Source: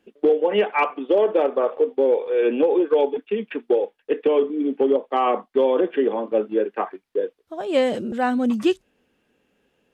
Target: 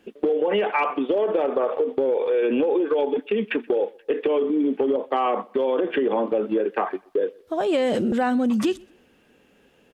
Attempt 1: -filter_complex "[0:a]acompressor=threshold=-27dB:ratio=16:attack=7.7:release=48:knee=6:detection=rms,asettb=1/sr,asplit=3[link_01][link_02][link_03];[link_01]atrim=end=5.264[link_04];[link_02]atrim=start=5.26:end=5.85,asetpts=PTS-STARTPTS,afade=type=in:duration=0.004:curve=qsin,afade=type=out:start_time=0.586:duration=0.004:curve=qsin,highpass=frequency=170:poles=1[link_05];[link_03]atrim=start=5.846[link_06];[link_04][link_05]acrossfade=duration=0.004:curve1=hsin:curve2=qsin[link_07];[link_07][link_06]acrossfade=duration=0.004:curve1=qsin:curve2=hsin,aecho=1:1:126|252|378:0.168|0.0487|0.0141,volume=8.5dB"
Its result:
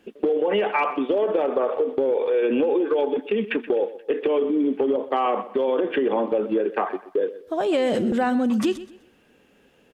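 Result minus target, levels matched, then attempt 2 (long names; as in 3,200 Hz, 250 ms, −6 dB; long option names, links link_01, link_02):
echo-to-direct +10.5 dB
-filter_complex "[0:a]acompressor=threshold=-27dB:ratio=16:attack=7.7:release=48:knee=6:detection=rms,asettb=1/sr,asplit=3[link_01][link_02][link_03];[link_01]atrim=end=5.264[link_04];[link_02]atrim=start=5.26:end=5.85,asetpts=PTS-STARTPTS,afade=type=in:duration=0.004:curve=qsin,afade=type=out:start_time=0.586:duration=0.004:curve=qsin,highpass=frequency=170:poles=1[link_05];[link_03]atrim=start=5.846[link_06];[link_04][link_05]acrossfade=duration=0.004:curve1=hsin:curve2=qsin[link_07];[link_07][link_06]acrossfade=duration=0.004:curve1=qsin:curve2=hsin,aecho=1:1:126|252:0.0501|0.0145,volume=8.5dB"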